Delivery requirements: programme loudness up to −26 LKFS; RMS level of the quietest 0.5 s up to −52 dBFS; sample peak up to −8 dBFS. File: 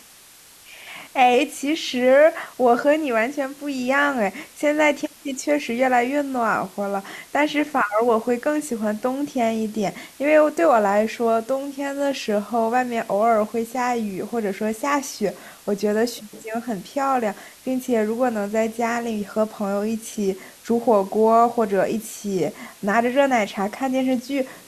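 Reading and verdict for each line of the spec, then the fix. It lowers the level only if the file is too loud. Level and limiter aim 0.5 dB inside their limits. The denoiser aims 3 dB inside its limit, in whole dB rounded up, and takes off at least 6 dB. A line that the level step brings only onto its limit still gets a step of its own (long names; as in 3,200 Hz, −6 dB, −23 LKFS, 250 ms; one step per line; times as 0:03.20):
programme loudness −21.5 LKFS: out of spec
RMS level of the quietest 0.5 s −48 dBFS: out of spec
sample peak −5.0 dBFS: out of spec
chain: level −5 dB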